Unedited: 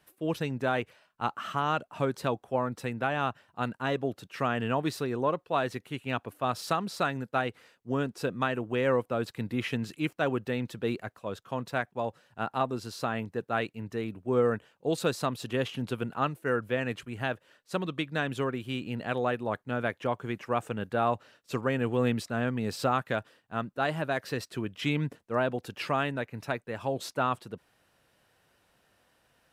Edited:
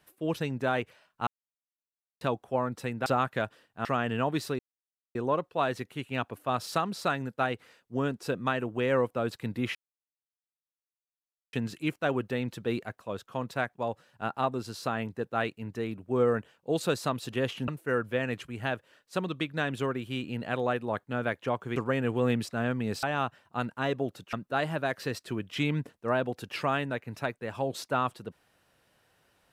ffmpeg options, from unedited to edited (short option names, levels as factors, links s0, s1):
-filter_complex "[0:a]asplit=11[s0][s1][s2][s3][s4][s5][s6][s7][s8][s9][s10];[s0]atrim=end=1.27,asetpts=PTS-STARTPTS,afade=t=out:st=1.266:d=0.004:c=hsin[s11];[s1]atrim=start=1.27:end=2.21,asetpts=PTS-STARTPTS,volume=0[s12];[s2]atrim=start=2.21:end=3.062,asetpts=PTS-STARTPTS,afade=t=in:d=0.004:c=hsin[s13];[s3]atrim=start=22.798:end=23.592[s14];[s4]atrim=start=4.358:end=5.1,asetpts=PTS-STARTPTS,afade=t=out:st=0.738:d=0.004:c=hsin,apad=pad_dur=0.56[s15];[s5]atrim=start=5.1:end=9.7,asetpts=PTS-STARTPTS,afade=t=in:d=0.004:c=hsin,afade=t=out:st=4.596:d=0.004:c=hsin,apad=pad_dur=1.78[s16];[s6]atrim=start=9.7:end=15.852,asetpts=PTS-STARTPTS,afade=t=in:d=0.004:c=hsin[s17];[s7]atrim=start=16.258:end=20.342[s18];[s8]atrim=start=21.528:end=22.802[s19];[s9]atrim=start=3.058:end=4.362[s20];[s10]atrim=start=23.588[s21];[s11][s12][s13]concat=n=3:v=0:a=1[s22];[s22][s14]acrossfade=d=0.004:c1=hsin:c2=hsin[s23];[s15][s16][s17]concat=n=3:v=0:a=1[s24];[s23][s24]acrossfade=d=0.004:c1=hsin:c2=hsin[s25];[s25][s18]acrossfade=d=0.004:c1=hsin:c2=hsin[s26];[s26][s19]acrossfade=d=0.004:c1=hsin:c2=hsin[s27];[s27][s20]acrossfade=d=0.004:c1=hsin:c2=hsin[s28];[s28][s21]acrossfade=d=0.004:c1=hsin:c2=hsin"